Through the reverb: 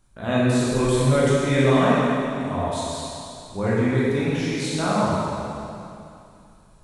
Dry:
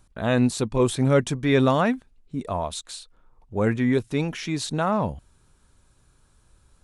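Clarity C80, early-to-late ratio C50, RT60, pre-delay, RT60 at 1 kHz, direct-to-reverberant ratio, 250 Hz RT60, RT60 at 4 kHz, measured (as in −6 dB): −2.0 dB, −4.5 dB, 2.7 s, 8 ms, 2.7 s, −8.5 dB, 2.8 s, 2.5 s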